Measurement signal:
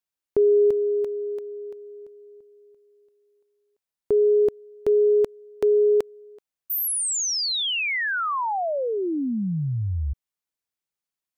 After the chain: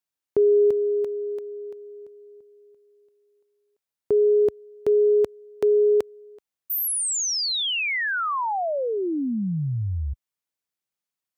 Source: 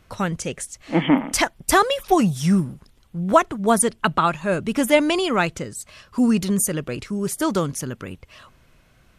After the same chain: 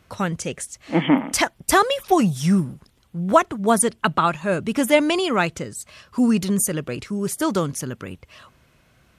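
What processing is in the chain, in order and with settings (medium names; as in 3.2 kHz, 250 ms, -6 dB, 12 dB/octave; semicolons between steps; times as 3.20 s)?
high-pass 57 Hz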